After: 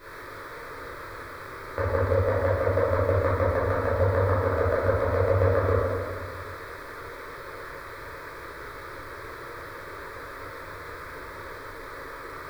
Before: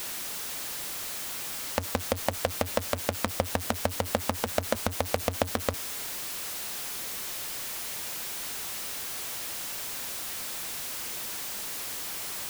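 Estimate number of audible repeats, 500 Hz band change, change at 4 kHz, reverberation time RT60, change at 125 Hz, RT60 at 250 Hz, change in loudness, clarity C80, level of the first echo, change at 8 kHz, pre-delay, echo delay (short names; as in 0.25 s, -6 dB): none, +9.0 dB, -13.5 dB, 1.9 s, +11.5 dB, 2.0 s, +5.5 dB, -0.5 dB, none, under -20 dB, 10 ms, none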